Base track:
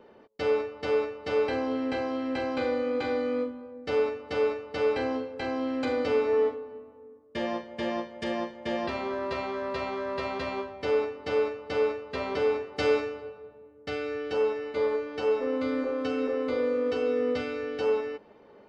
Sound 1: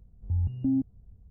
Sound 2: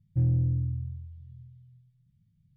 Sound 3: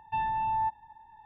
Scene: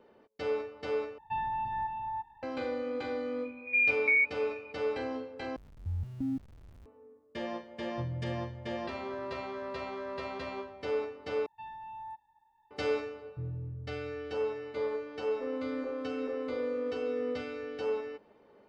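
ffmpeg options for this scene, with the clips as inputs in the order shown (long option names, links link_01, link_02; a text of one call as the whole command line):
ffmpeg -i bed.wav -i cue0.wav -i cue1.wav -i cue2.wav -filter_complex "[3:a]asplit=2[link_01][link_02];[1:a]asplit=2[link_03][link_04];[2:a]asplit=2[link_05][link_06];[0:a]volume=-6.5dB[link_07];[link_01]aecho=1:1:343:0.562[link_08];[link_03]lowpass=frequency=2100:width_type=q:width=0.5098,lowpass=frequency=2100:width_type=q:width=0.6013,lowpass=frequency=2100:width_type=q:width=0.9,lowpass=frequency=2100:width_type=q:width=2.563,afreqshift=-2500[link_09];[link_04]aeval=exprs='val(0)+0.5*0.0075*sgn(val(0))':channel_layout=same[link_10];[link_05]asplit=2[link_11][link_12];[link_12]adelay=30,volume=-11dB[link_13];[link_11][link_13]amix=inputs=2:normalize=0[link_14];[link_02]bass=frequency=250:gain=-5,treble=frequency=4000:gain=11[link_15];[link_07]asplit=4[link_16][link_17][link_18][link_19];[link_16]atrim=end=1.184[link_20];[link_08]atrim=end=1.25,asetpts=PTS-STARTPTS,volume=-3.5dB[link_21];[link_17]atrim=start=2.426:end=5.564[link_22];[link_10]atrim=end=1.3,asetpts=PTS-STARTPTS,volume=-8dB[link_23];[link_18]atrim=start=6.856:end=11.464[link_24];[link_15]atrim=end=1.25,asetpts=PTS-STARTPTS,volume=-15dB[link_25];[link_19]atrim=start=12.706[link_26];[link_09]atrim=end=1.3,asetpts=PTS-STARTPTS,afade=type=in:duration=0.004:curve=hsin,afade=type=out:start_time=1.296:duration=0.004:curve=hsin,adelay=3430[link_27];[link_14]atrim=end=2.56,asetpts=PTS-STARTPTS,volume=-12.5dB,afade=type=in:duration=0.004:curve=hsin,afade=type=out:start_time=2.556:duration=0.004:curve=hsin,adelay=7820[link_28];[link_06]atrim=end=2.56,asetpts=PTS-STARTPTS,volume=-14dB,afade=type=in:duration=0.004:curve=hsin,afade=type=out:start_time=2.556:duration=0.004:curve=hsin,adelay=13210[link_29];[link_20][link_21]acrossfade=duration=0.004:curve1=hsin:curve2=hsin[link_30];[link_30][link_22]acrossfade=duration=0.004:curve1=hsin:curve2=hsin[link_31];[link_31][link_23]acrossfade=duration=0.004:curve1=hsin:curve2=hsin[link_32];[link_32][link_24]acrossfade=duration=0.004:curve1=hsin:curve2=hsin[link_33];[link_33][link_25]acrossfade=duration=0.004:curve1=hsin:curve2=hsin[link_34];[link_34][link_26]acrossfade=duration=0.004:curve1=hsin:curve2=hsin[link_35];[link_35][link_27][link_28][link_29]amix=inputs=4:normalize=0" out.wav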